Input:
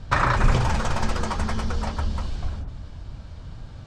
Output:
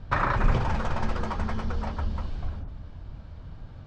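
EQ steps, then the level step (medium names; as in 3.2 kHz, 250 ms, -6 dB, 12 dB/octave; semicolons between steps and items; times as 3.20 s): distance through air 73 m; treble shelf 3.9 kHz -8.5 dB; hum notches 60/120 Hz; -3.0 dB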